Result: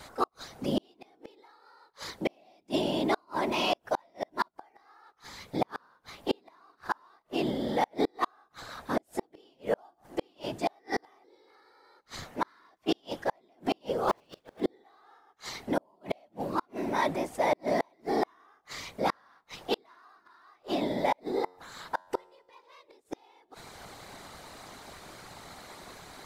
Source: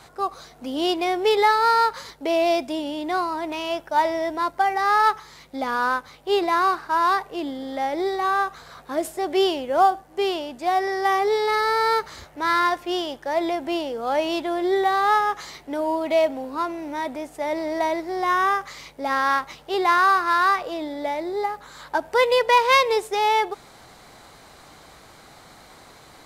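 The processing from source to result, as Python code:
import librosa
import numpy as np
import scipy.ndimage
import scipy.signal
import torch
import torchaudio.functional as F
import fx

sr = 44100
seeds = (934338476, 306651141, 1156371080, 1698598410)

y = fx.cycle_switch(x, sr, every=3, mode='inverted', at=(14.07, 14.6), fade=0.02)
y = fx.dynamic_eq(y, sr, hz=4300.0, q=1.4, threshold_db=-39.0, ratio=4.0, max_db=4)
y = fx.whisperise(y, sr, seeds[0])
y = fx.gate_flip(y, sr, shuts_db=-15.0, range_db=-40)
y = fx.comb_fb(y, sr, f0_hz=91.0, decay_s=0.99, harmonics='all', damping=0.0, mix_pct=30, at=(21.19, 22.53))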